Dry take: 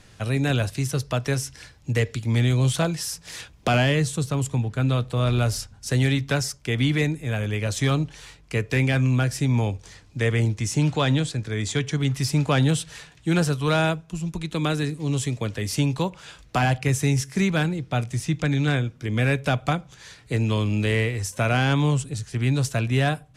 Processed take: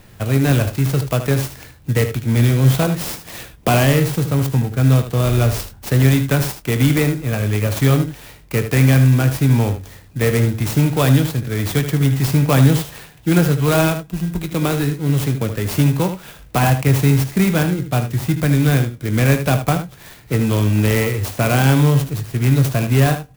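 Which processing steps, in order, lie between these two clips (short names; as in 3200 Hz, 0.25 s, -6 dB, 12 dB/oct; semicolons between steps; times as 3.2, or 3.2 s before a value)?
in parallel at -7 dB: sample-and-hold 25×; on the sum: doubler 22 ms -13 dB; echo 76 ms -10 dB; clock jitter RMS 0.044 ms; gain +3.5 dB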